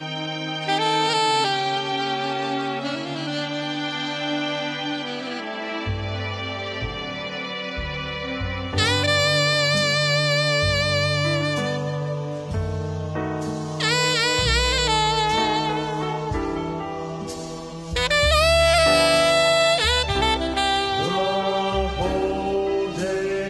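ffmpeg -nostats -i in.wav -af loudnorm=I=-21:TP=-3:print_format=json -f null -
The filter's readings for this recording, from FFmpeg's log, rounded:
"input_i" : "-21.8",
"input_tp" : "-6.9",
"input_lra" : "8.2",
"input_thresh" : "-31.9",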